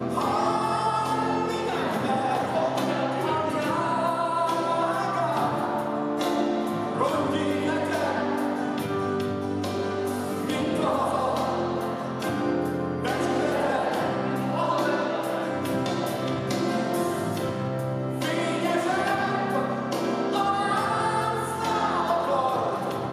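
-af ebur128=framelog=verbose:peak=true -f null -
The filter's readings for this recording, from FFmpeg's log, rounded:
Integrated loudness:
  I:         -26.1 LUFS
  Threshold: -36.1 LUFS
Loudness range:
  LRA:         1.8 LU
  Threshold: -46.2 LUFS
  LRA low:   -27.1 LUFS
  LRA high:  -25.4 LUFS
True peak:
  Peak:      -11.3 dBFS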